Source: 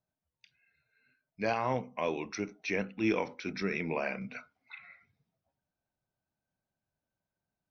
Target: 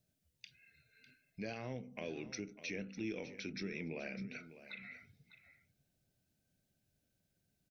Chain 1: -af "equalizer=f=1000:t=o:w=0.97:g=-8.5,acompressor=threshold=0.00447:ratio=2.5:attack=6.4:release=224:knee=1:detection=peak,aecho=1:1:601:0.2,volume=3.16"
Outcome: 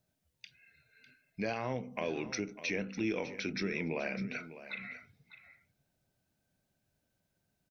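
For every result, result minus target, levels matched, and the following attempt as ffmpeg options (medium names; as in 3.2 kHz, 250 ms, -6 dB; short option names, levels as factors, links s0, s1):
compression: peak gain reduction -5.5 dB; 1 kHz band +4.5 dB
-af "equalizer=f=1000:t=o:w=0.97:g=-8.5,acompressor=threshold=0.00126:ratio=2.5:attack=6.4:release=224:knee=1:detection=peak,aecho=1:1:601:0.2,volume=3.16"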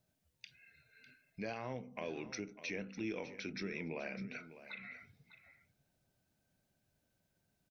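1 kHz band +4.5 dB
-af "equalizer=f=1000:t=o:w=0.97:g=-20.5,acompressor=threshold=0.00126:ratio=2.5:attack=6.4:release=224:knee=1:detection=peak,aecho=1:1:601:0.2,volume=3.16"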